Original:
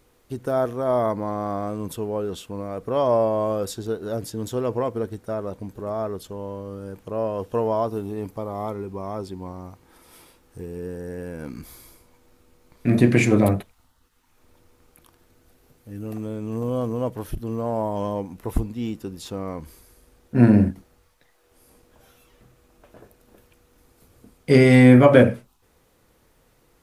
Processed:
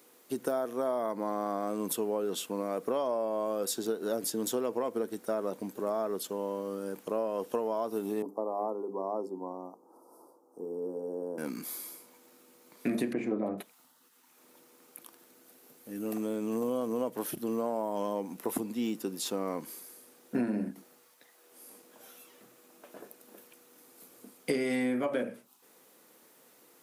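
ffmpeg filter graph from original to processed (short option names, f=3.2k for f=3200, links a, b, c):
-filter_complex "[0:a]asettb=1/sr,asplit=3[a][b][c];[a]atrim=end=8.224[d];[b]atrim=start=8.22:end=11.38,asetpts=PTS-STARTPTS,afade=t=in:d=0.004:c=qsin,afade=t=out:st=3.156:d=0.004:c=qsin,asuperstop=centerf=2400:order=8:qfactor=0.59,acrossover=split=210 2000:gain=0.0631 1 0.1[e][f][g];[e][f][g]amix=inputs=3:normalize=0,bandreject=f=50:t=h:w=6,bandreject=f=100:t=h:w=6,bandreject=f=150:t=h:w=6,bandreject=f=200:t=h:w=6,bandreject=f=250:t=h:w=6,bandreject=f=300:t=h:w=6,bandreject=f=350:t=h:w=6,bandreject=f=400:t=h:w=6,bandreject=f=450:t=h:w=6,bandreject=f=500:t=h:w=6[h];[c]atrim=start=11.376[i];[d][h]acrossfade=d=0.004:c1=hsin:c2=qsin[j];[j][i]acrossfade=d=0.004:c1=qsin:c2=hsin,asettb=1/sr,asplit=3[k][l][m];[k]atrim=end=13.134[n];[l]atrim=start=13.13:end=13.58,asetpts=PTS-STARTPTS,afade=t=in:d=0.004:c=qsin,afade=t=out:st=0.446:d=0.004:c=qsin,lowpass=1k,aemphasis=mode=production:type=75kf[o];[m]atrim=start=13.576[p];[n][o]acrossfade=d=0.004:c1=hsin:c2=qsin[q];[q][p]acrossfade=d=0.004:c1=qsin:c2=hsin,highpass=f=210:w=0.5412,highpass=f=210:w=1.3066,highshelf=f=7.4k:g=10,acompressor=threshold=-27dB:ratio=20"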